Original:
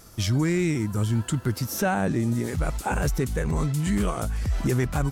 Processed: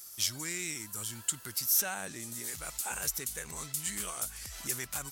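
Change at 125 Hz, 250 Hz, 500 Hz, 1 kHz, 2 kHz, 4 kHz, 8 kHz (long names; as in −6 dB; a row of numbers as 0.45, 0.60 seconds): −24.5, −22.5, −18.5, −13.0, −7.5, −0.5, +4.5 decibels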